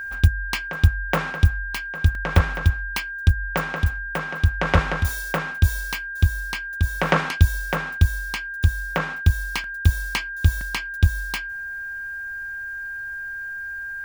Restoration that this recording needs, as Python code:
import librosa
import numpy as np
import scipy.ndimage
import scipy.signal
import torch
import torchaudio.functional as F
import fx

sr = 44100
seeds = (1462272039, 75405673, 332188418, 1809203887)

y = fx.notch(x, sr, hz=1600.0, q=30.0)
y = fx.fix_interpolate(y, sr, at_s=(2.15, 9.64, 10.61), length_ms=2.4)